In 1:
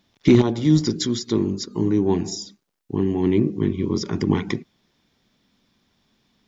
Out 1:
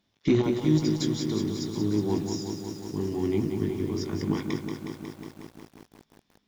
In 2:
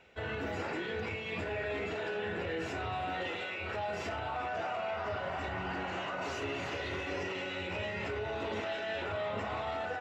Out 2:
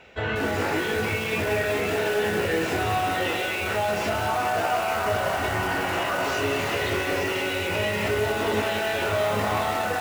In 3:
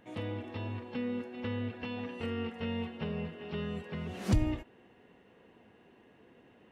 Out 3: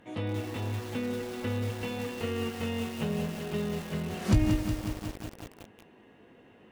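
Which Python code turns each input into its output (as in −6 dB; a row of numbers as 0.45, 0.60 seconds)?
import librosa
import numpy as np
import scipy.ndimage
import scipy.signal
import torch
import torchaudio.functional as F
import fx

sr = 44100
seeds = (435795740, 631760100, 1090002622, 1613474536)

y = fx.doubler(x, sr, ms=19.0, db=-8.0)
y = fx.cheby_harmonics(y, sr, harmonics=(8,), levels_db=(-37,), full_scale_db=-1.5)
y = fx.echo_crushed(y, sr, ms=182, feedback_pct=80, bits=7, wet_db=-6.5)
y = librosa.util.normalize(y) * 10.0 ** (-12 / 20.0)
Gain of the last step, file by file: −9.0, +10.0, +3.0 decibels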